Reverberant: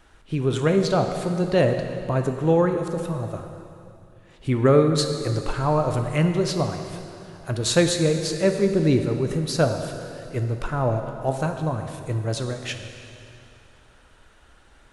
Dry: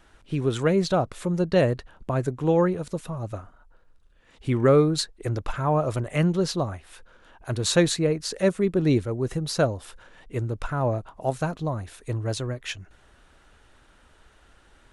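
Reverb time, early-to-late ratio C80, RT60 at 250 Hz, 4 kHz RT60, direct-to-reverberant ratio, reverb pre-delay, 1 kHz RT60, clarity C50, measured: 2.7 s, 7.0 dB, 2.7 s, 2.5 s, 5.0 dB, 4 ms, 2.7 s, 6.5 dB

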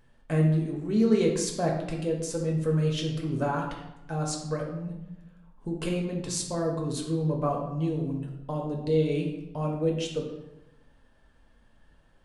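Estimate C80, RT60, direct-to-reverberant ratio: 7.5 dB, 0.95 s, −0.5 dB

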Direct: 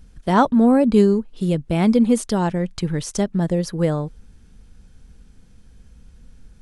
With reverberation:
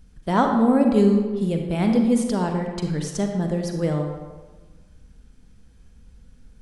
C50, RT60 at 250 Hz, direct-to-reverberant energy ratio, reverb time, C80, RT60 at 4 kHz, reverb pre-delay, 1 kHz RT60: 4.0 dB, 1.3 s, 3.0 dB, 1.4 s, 6.0 dB, 0.85 s, 37 ms, 1.4 s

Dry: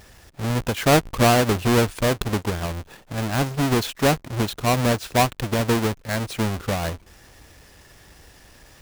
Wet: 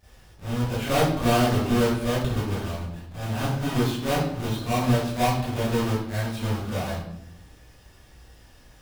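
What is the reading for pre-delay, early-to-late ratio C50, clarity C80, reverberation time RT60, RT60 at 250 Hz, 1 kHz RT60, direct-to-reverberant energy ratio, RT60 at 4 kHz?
29 ms, −1.5 dB, 4.0 dB, 0.75 s, 1.2 s, 0.70 s, −13.5 dB, 0.55 s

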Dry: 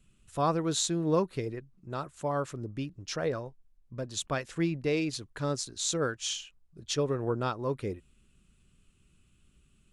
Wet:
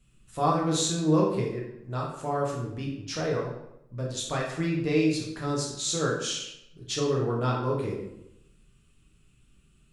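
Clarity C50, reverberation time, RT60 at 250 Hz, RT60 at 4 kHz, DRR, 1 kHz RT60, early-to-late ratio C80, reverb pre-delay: 3.5 dB, 0.85 s, 0.85 s, 0.60 s, −3.0 dB, 0.80 s, 7.0 dB, 7 ms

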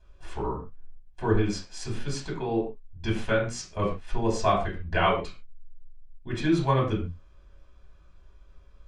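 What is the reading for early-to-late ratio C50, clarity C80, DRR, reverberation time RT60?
7.0 dB, 11.5 dB, −4.5 dB, non-exponential decay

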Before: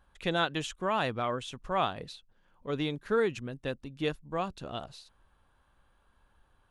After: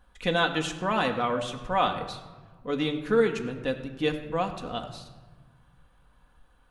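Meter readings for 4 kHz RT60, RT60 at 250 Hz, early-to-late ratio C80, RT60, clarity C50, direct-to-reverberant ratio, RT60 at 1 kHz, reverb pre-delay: 0.80 s, 2.0 s, 11.0 dB, 1.3 s, 10.0 dB, 3.0 dB, 1.3 s, 4 ms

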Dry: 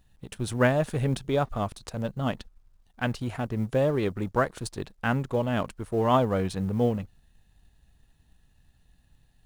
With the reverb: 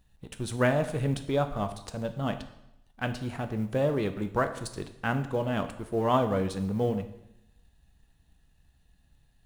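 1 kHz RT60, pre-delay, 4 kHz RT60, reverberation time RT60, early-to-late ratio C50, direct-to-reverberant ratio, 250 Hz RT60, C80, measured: 0.85 s, 4 ms, 0.80 s, 0.85 s, 12.0 dB, 8.0 dB, 0.90 s, 14.0 dB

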